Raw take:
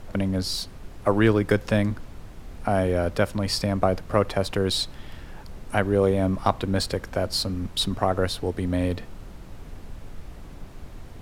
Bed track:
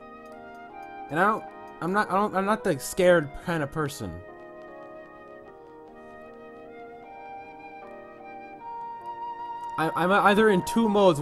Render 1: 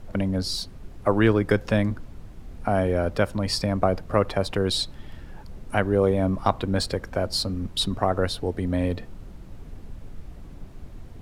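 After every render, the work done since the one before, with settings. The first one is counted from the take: denoiser 6 dB, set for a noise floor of -43 dBFS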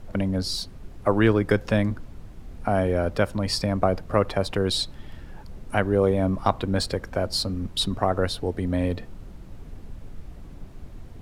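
nothing audible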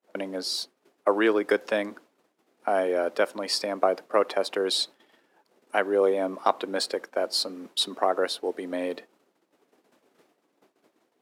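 expander -28 dBFS; HPF 320 Hz 24 dB/oct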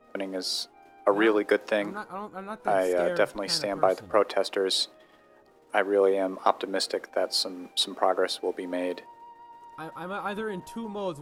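add bed track -13 dB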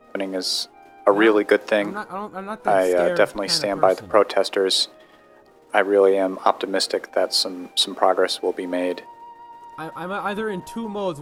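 gain +6.5 dB; limiter -2 dBFS, peak gain reduction 2 dB

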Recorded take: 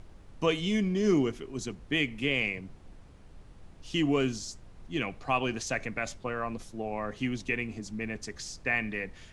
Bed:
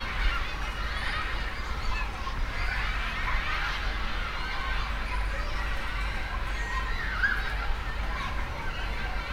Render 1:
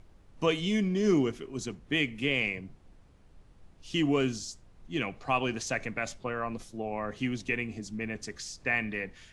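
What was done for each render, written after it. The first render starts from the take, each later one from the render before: noise print and reduce 6 dB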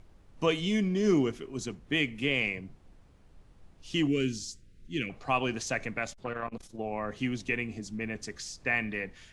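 4.07–5.1 Butterworth band-stop 870 Hz, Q 0.65; 6.03–6.79 core saturation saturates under 570 Hz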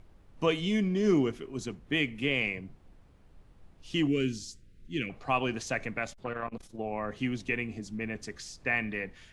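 bell 6500 Hz -4 dB 1.3 oct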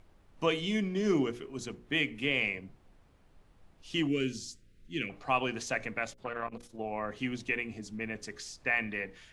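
low shelf 280 Hz -5 dB; notches 60/120/180/240/300/360/420/480/540 Hz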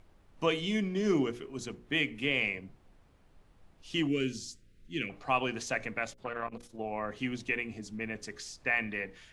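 nothing audible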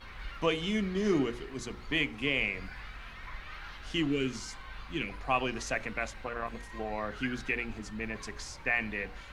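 add bed -15 dB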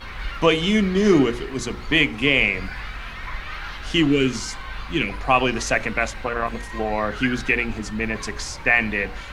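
gain +12 dB; limiter -3 dBFS, peak gain reduction 1 dB

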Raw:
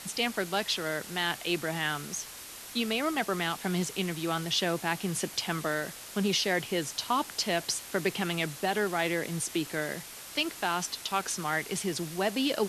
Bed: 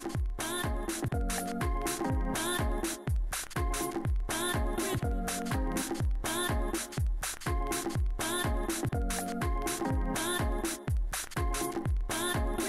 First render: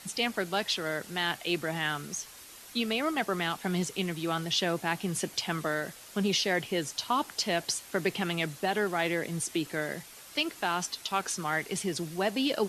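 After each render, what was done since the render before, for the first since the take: denoiser 6 dB, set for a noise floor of -45 dBFS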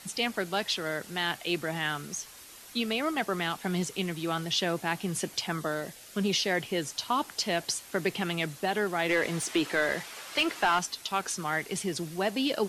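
5.46–6.2 bell 3300 Hz -> 780 Hz -14 dB 0.25 oct; 9.09–10.79 overdrive pedal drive 18 dB, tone 2600 Hz, clips at -14.5 dBFS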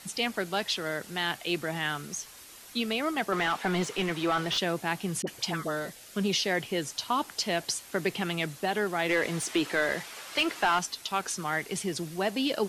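3.32–4.58 overdrive pedal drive 18 dB, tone 1800 Hz, clips at -16 dBFS; 5.22–5.9 dispersion highs, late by 53 ms, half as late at 940 Hz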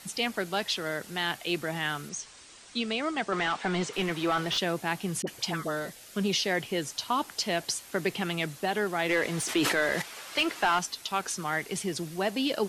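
2.09–3.93 elliptic low-pass 8800 Hz; 9.33–10.02 sustainer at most 29 dB/s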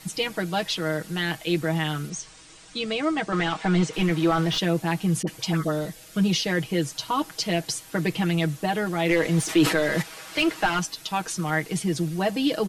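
low shelf 260 Hz +10 dB; comb 6.3 ms, depth 77%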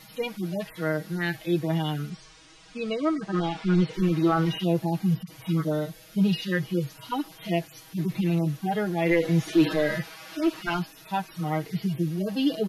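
median-filter separation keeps harmonic; bell 8100 Hz -10.5 dB 0.52 oct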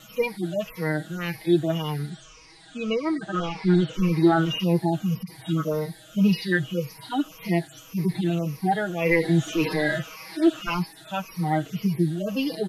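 moving spectral ripple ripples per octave 0.85, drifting -1.8 Hz, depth 14 dB; wow and flutter 19 cents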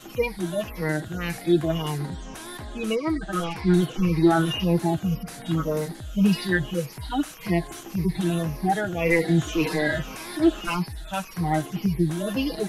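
add bed -6.5 dB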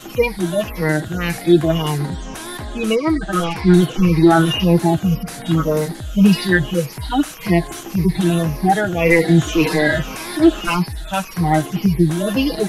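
gain +8 dB; limiter -2 dBFS, peak gain reduction 2 dB

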